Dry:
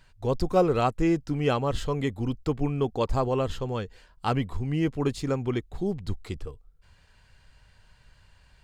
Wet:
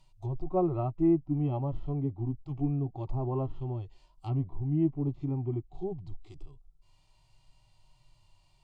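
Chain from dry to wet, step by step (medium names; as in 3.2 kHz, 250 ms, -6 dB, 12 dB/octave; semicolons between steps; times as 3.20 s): static phaser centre 320 Hz, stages 8; harmonic-percussive split percussive -18 dB; low-pass that closes with the level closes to 1.2 kHz, closed at -29 dBFS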